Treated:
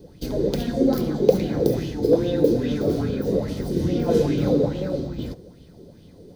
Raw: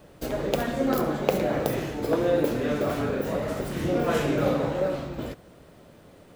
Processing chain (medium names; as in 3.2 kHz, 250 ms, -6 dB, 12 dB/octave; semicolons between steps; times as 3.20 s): tone controls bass +8 dB, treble +8 dB; band-stop 600 Hz, Q 15; reverberation RT60 0.55 s, pre-delay 3 ms, DRR 12 dB; sweeping bell 2.4 Hz 380–3100 Hz +13 dB; trim -12.5 dB